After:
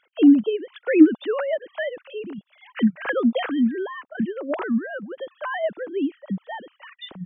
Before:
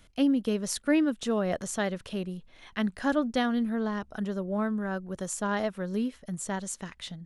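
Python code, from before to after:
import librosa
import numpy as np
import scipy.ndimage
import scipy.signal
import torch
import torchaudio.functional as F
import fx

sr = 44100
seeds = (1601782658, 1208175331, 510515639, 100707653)

y = fx.sine_speech(x, sr)
y = y * librosa.db_to_amplitude(7.0)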